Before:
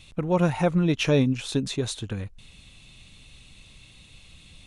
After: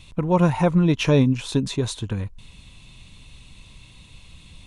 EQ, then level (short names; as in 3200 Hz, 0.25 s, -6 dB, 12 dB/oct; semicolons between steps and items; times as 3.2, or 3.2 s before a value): low shelf 280 Hz +5 dB; bell 990 Hz +10.5 dB 0.2 oct; +1.0 dB